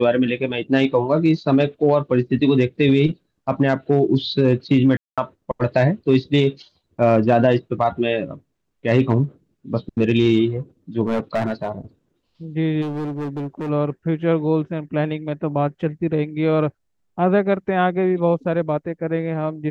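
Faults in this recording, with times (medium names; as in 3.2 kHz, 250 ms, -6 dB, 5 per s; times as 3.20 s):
4.97–5.18 s: dropout 206 ms
11.07–11.70 s: clipped -16 dBFS
12.81–13.70 s: clipped -23.5 dBFS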